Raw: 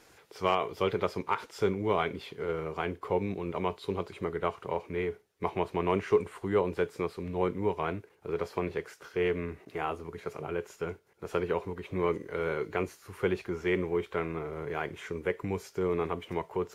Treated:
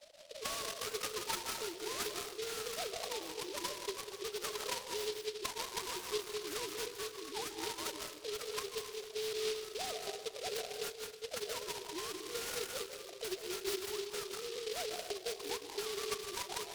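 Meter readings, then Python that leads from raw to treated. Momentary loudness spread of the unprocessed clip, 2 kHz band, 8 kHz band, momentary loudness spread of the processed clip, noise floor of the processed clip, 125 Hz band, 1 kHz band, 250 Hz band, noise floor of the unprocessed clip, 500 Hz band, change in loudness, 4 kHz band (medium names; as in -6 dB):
8 LU, -6.0 dB, no reading, 4 LU, -51 dBFS, -22.0 dB, -10.0 dB, -15.5 dB, -61 dBFS, -10.0 dB, -7.0 dB, +7.0 dB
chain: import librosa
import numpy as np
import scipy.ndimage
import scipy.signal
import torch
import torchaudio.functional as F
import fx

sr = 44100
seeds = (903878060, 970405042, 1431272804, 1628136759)

p1 = fx.sine_speech(x, sr)
p2 = fx.auto_wah(p1, sr, base_hz=580.0, top_hz=1300.0, q=8.5, full_db=-29.5, direction='up')
p3 = fx.over_compress(p2, sr, threshold_db=-53.0, ratio=-0.5)
p4 = p2 + (p3 * 10.0 ** (2.5 / 20.0))
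p5 = scipy.signal.sosfilt(scipy.signal.butter(6, 2900.0, 'lowpass', fs=sr, output='sos'), p4)
p6 = fx.peak_eq(p5, sr, hz=1200.0, db=-7.0, octaves=0.74)
p7 = fx.rev_freeverb(p6, sr, rt60_s=1.1, hf_ratio=0.25, predelay_ms=115, drr_db=4.0)
p8 = fx.noise_mod_delay(p7, sr, seeds[0], noise_hz=3700.0, depth_ms=0.18)
y = p8 * 10.0 ** (7.0 / 20.0)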